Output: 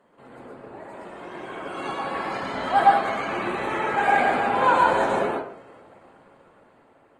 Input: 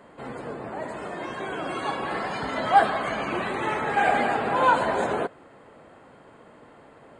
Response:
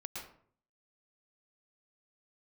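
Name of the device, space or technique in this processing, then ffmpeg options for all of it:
far-field microphone of a smart speaker: -filter_complex "[1:a]atrim=start_sample=2205[a];[0:a][a]afir=irnorm=-1:irlink=0,highpass=f=120:p=1,dynaudnorm=f=430:g=7:m=12dB,volume=-4.5dB" -ar 48000 -c:a libopus -b:a 20k

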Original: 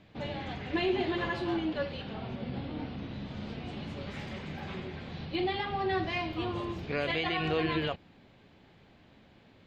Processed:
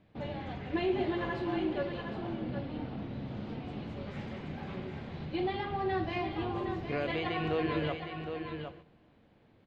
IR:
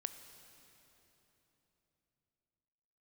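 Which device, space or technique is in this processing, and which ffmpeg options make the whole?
keyed gated reverb: -filter_complex "[0:a]highshelf=f=2.2k:g=-9.5,aecho=1:1:764:0.422,asplit=3[a][b][c];[1:a]atrim=start_sample=2205[d];[b][d]afir=irnorm=-1:irlink=0[e];[c]apad=whole_len=460037[f];[e][f]sidechaingate=range=-12dB:threshold=-53dB:ratio=16:detection=peak,volume=4dB[g];[a][g]amix=inputs=2:normalize=0,volume=-7.5dB"

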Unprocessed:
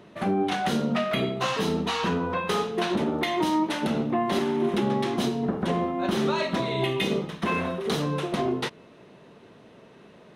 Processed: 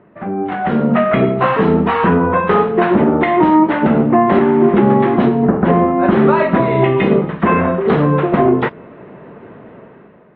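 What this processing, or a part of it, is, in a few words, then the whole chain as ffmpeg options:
action camera in a waterproof case: -af "lowpass=f=2k:w=0.5412,lowpass=f=2k:w=1.3066,dynaudnorm=f=280:g=5:m=13dB,volume=2dB" -ar 32000 -c:a aac -b:a 48k

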